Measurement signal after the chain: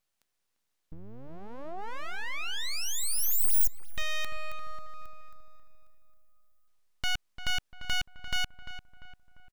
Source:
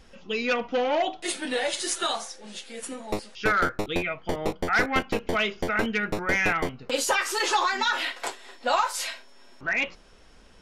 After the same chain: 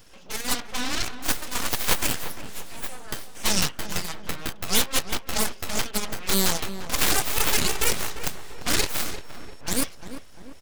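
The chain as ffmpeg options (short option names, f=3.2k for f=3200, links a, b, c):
-filter_complex "[0:a]aeval=exprs='0.251*(cos(1*acos(clip(val(0)/0.251,-1,1)))-cos(1*PI/2))+0.00794*(cos(4*acos(clip(val(0)/0.251,-1,1)))-cos(4*PI/2))+0.0282*(cos(5*acos(clip(val(0)/0.251,-1,1)))-cos(5*PI/2))+0.1*(cos(7*acos(clip(val(0)/0.251,-1,1)))-cos(7*PI/2))+0.0126*(cos(8*acos(clip(val(0)/0.251,-1,1)))-cos(8*PI/2))':c=same,acrossover=split=420[a][b];[a]acompressor=threshold=-38dB:ratio=6[c];[c][b]amix=inputs=2:normalize=0,aemphasis=mode=production:type=50kf,aeval=exprs='abs(val(0))':c=same,asplit=2[d][e];[e]adelay=346,lowpass=f=1.8k:p=1,volume=-10dB,asplit=2[f][g];[g]adelay=346,lowpass=f=1.8k:p=1,volume=0.51,asplit=2[h][i];[i]adelay=346,lowpass=f=1.8k:p=1,volume=0.51,asplit=2[j][k];[k]adelay=346,lowpass=f=1.8k:p=1,volume=0.51,asplit=2[l][m];[m]adelay=346,lowpass=f=1.8k:p=1,volume=0.51,asplit=2[n][o];[o]adelay=346,lowpass=f=1.8k:p=1,volume=0.51[p];[f][h][j][l][n][p]amix=inputs=6:normalize=0[q];[d][q]amix=inputs=2:normalize=0,volume=-1dB"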